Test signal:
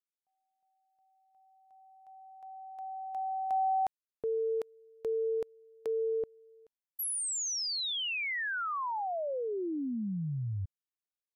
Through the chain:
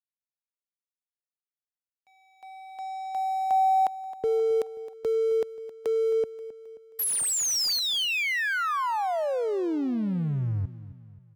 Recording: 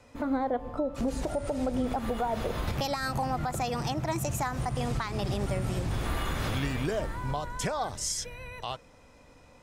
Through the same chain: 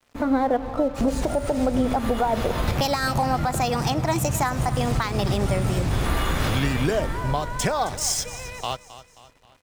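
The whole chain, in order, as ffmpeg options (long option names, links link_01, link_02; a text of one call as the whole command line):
ffmpeg -i in.wav -filter_complex "[0:a]acrossover=split=130|3700[link_01][link_02][link_03];[link_03]acrusher=bits=2:mode=log:mix=0:aa=0.000001[link_04];[link_01][link_02][link_04]amix=inputs=3:normalize=0,aeval=exprs='sgn(val(0))*max(abs(val(0))-0.00251,0)':channel_layout=same,aecho=1:1:266|532|798|1064:0.168|0.0806|0.0387|0.0186,volume=8dB" out.wav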